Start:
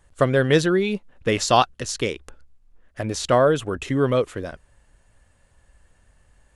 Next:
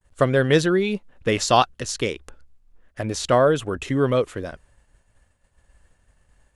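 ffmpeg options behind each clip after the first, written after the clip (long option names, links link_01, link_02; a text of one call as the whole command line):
ffmpeg -i in.wav -af "agate=range=-33dB:threshold=-52dB:ratio=3:detection=peak" out.wav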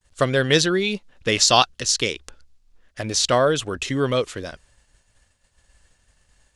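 ffmpeg -i in.wav -af "equalizer=frequency=5000:width=0.59:gain=12.5,volume=-2dB" out.wav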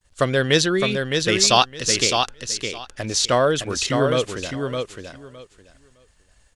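ffmpeg -i in.wav -af "aecho=1:1:612|1224|1836:0.562|0.0956|0.0163" out.wav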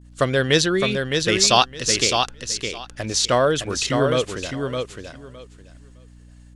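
ffmpeg -i in.wav -af "aeval=exprs='val(0)+0.00562*(sin(2*PI*60*n/s)+sin(2*PI*2*60*n/s)/2+sin(2*PI*3*60*n/s)/3+sin(2*PI*4*60*n/s)/4+sin(2*PI*5*60*n/s)/5)':channel_layout=same" out.wav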